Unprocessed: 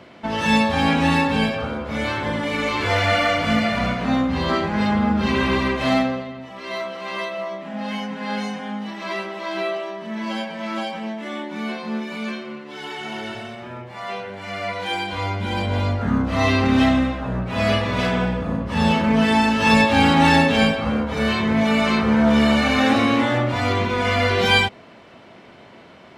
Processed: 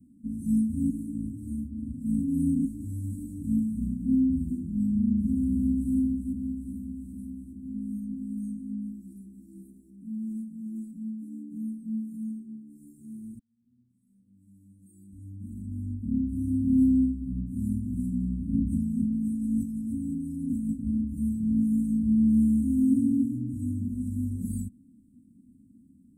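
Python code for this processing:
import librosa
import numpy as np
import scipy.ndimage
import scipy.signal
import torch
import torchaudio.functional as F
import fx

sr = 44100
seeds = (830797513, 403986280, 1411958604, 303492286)

y = fx.echo_throw(x, sr, start_s=5.12, length_s=0.8, ms=400, feedback_pct=70, wet_db=-6.0)
y = fx.over_compress(y, sr, threshold_db=-22.0, ratio=-1.0, at=(18.53, 20.69))
y = fx.edit(y, sr, fx.reverse_span(start_s=0.9, length_s=1.75),
    fx.fade_in_span(start_s=13.39, length_s=4.18), tone=tone)
y = scipy.signal.sosfilt(scipy.signal.cheby1(5, 1.0, [270.0, 8300.0], 'bandstop', fs=sr, output='sos'), y)
y = y + 0.55 * np.pad(y, (int(3.6 * sr / 1000.0), 0))[:len(y)]
y = y * librosa.db_to_amplitude(-5.0)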